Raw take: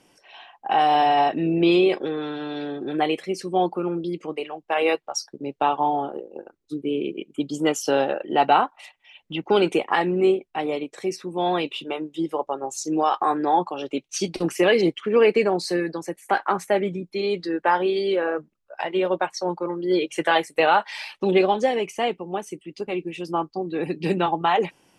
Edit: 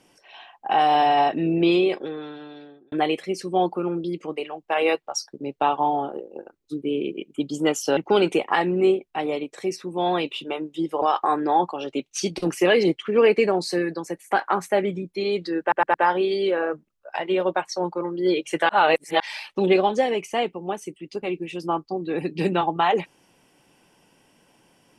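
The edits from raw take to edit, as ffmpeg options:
-filter_complex "[0:a]asplit=9[s0][s1][s2][s3][s4][s5][s6][s7][s8];[s0]atrim=end=2.92,asetpts=PTS-STARTPTS,afade=t=out:st=1.54:d=1.38[s9];[s1]atrim=start=2.92:end=7.972,asetpts=PTS-STARTPTS,afade=t=in:d=0.004:c=hsin[s10];[s2]atrim=start=9.368:end=12.422[s11];[s3]atrim=start=12.998:end=17.702[s12];[s4]atrim=start=17.588:end=17.702[s13];[s5]atrim=start=17.588:end=17.702[s14];[s6]atrim=start=17.588:end=20.342[s15];[s7]atrim=start=20.338:end=20.852,asetpts=PTS-STARTPTS,areverse[s16];[s8]atrim=start=20.848[s17];[s9][s10]concat=n=2:v=0:a=1[s18];[s18][s11]acrossfade=d=0.004:c1=hsin:c2=hsin[s19];[s19][s12]acrossfade=d=0.004:c1=hsin:c2=hsin[s20];[s20][s13]acrossfade=d=0.004:c1=hsin:c2=hsin[s21];[s21][s14]acrossfade=d=0.004:c1=hsin:c2=hsin[s22];[s22][s15]acrossfade=d=0.004:c1=hsin:c2=hsin[s23];[s23][s16]acrossfade=d=0.004:c1=hsin:c2=hsin[s24];[s24][s17]acrossfade=d=0.004:c1=hsin:c2=hsin"

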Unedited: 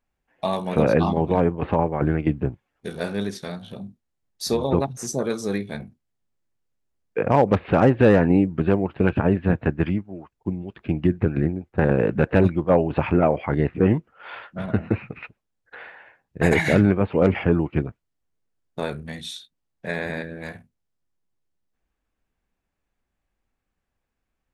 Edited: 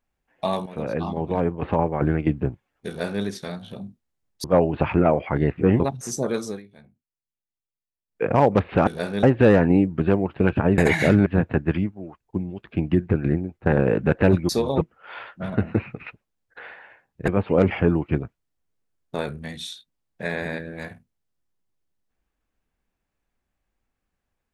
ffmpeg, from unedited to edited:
-filter_complex "[0:a]asplit=13[s0][s1][s2][s3][s4][s5][s6][s7][s8][s9][s10][s11][s12];[s0]atrim=end=0.66,asetpts=PTS-STARTPTS,afade=t=out:st=0.656:d=0.004:c=hsin:silence=0.188365[s13];[s1]atrim=start=0.66:end=4.442,asetpts=PTS-STARTPTS,afade=t=in:d=1.23:silence=0.188365[s14];[s2]atrim=start=12.608:end=13.972[s15];[s3]atrim=start=4.758:end=5.56,asetpts=PTS-STARTPTS,afade=t=out:st=0.642:d=0.16:silence=0.125893[s16];[s4]atrim=start=5.56:end=7.04,asetpts=PTS-STARTPTS,volume=0.126[s17];[s5]atrim=start=7.04:end=7.832,asetpts=PTS-STARTPTS,afade=t=in:d=0.16:silence=0.125893[s18];[s6]atrim=start=2.878:end=3.242[s19];[s7]atrim=start=7.828:end=9.382[s20];[s8]atrim=start=16.438:end=16.922[s21];[s9]atrim=start=9.378:end=12.612[s22];[s10]atrim=start=4.438:end=4.762[s23];[s11]atrim=start=13.968:end=16.442[s24];[s12]atrim=start=16.918[s25];[s13][s14]concat=n=2:v=0:a=1[s26];[s26][s15]acrossfade=d=0.004:c1=hsin:c2=hsin[s27];[s16][s17][s18]concat=n=3:v=0:a=1[s28];[s27][s28]acrossfade=d=0.004:c1=hsin:c2=hsin[s29];[s29][s19]acrossfade=d=0.004:c1=hsin:c2=hsin[s30];[s30][s20]acrossfade=d=0.004:c1=hsin:c2=hsin[s31];[s31][s21]acrossfade=d=0.004:c1=hsin:c2=hsin[s32];[s32][s22]acrossfade=d=0.004:c1=hsin:c2=hsin[s33];[s33][s23]acrossfade=d=0.004:c1=hsin:c2=hsin[s34];[s34][s24]acrossfade=d=0.004:c1=hsin:c2=hsin[s35];[s35][s25]acrossfade=d=0.004:c1=hsin:c2=hsin"

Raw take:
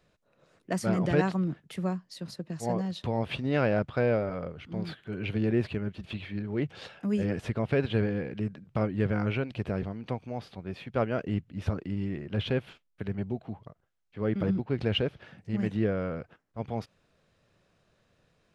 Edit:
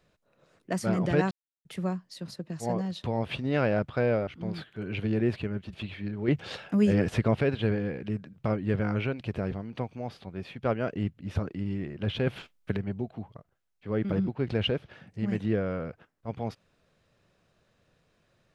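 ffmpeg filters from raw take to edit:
-filter_complex "[0:a]asplit=8[s0][s1][s2][s3][s4][s5][s6][s7];[s0]atrim=end=1.31,asetpts=PTS-STARTPTS,afade=t=out:st=1.306:d=0.004:c=hsin[s8];[s1]atrim=start=1.31:end=1.65,asetpts=PTS-STARTPTS,volume=0[s9];[s2]atrim=start=1.65:end=4.272,asetpts=PTS-STARTPTS,afade=t=in:d=0.004:c=hsin[s10];[s3]atrim=start=4.578:end=6.592[s11];[s4]atrim=start=6.588:end=7.722,asetpts=PTS-STARTPTS,volume=1.88[s12];[s5]atrim=start=7.718:end=12.582[s13];[s6]atrim=start=12.578:end=13.082,asetpts=PTS-STARTPTS,volume=2.24[s14];[s7]atrim=start=13.078[s15];[s8][s9][s10]concat=n=3:v=0:a=1[s16];[s16][s11]acrossfade=d=0.004:c1=hsin:c2=hsin[s17];[s17][s12]acrossfade=d=0.004:c1=hsin:c2=hsin[s18];[s18][s13]acrossfade=d=0.004:c1=hsin:c2=hsin[s19];[s19][s14]acrossfade=d=0.004:c1=hsin:c2=hsin[s20];[s20][s15]acrossfade=d=0.004:c1=hsin:c2=hsin"

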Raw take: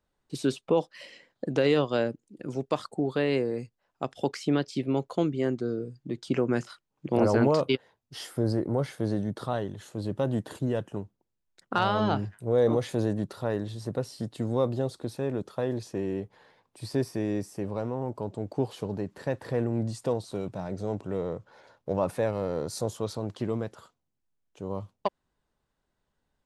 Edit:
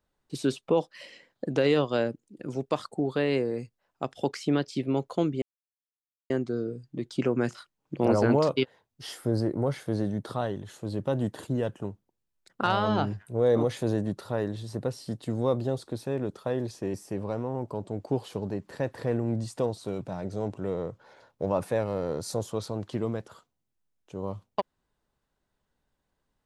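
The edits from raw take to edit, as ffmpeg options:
-filter_complex "[0:a]asplit=3[s0][s1][s2];[s0]atrim=end=5.42,asetpts=PTS-STARTPTS,afade=t=out:st=5.416:d=0.004:c=hsin,apad=pad_dur=0.88[s3];[s1]atrim=start=5.42:end=16.062,asetpts=PTS-STARTPTS,afade=t=in:d=0.004:c=hsin[s4];[s2]atrim=start=17.408[s5];[s3][s4]concat=n=2:v=0:a=1[s6];[s6][s5]acrossfade=d=0.004:c1=hsin:c2=hsin"

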